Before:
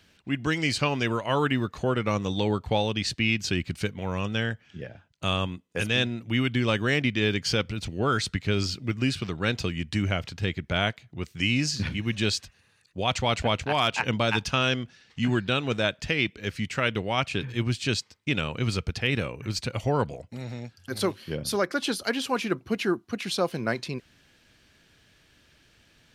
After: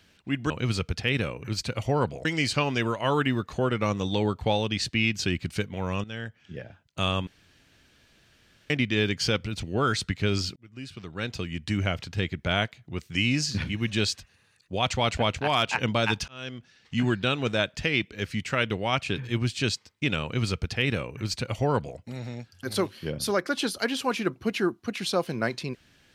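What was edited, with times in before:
4.29–4.86 fade in, from -14 dB
5.52–6.95 room tone
8.81–10.12 fade in
14.53–15.19 fade in
18.48–20.23 copy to 0.5

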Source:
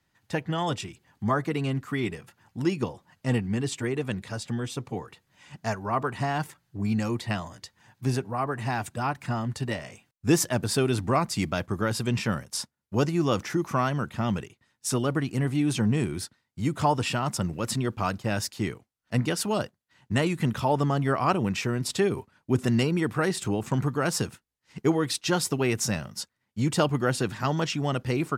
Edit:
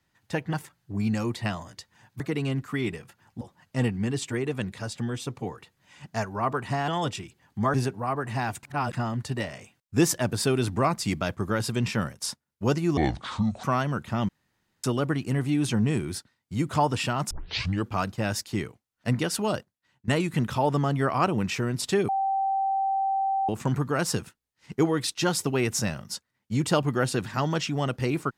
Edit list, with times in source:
0.53–1.39 swap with 6.38–8.05
2.6–2.91 cut
8.94–9.24 reverse
13.28–13.7 speed 63%
14.35–14.9 room tone
17.37 tape start 0.55 s
19.63–20.14 fade out, to -18 dB
22.15–23.55 bleep 778 Hz -22.5 dBFS

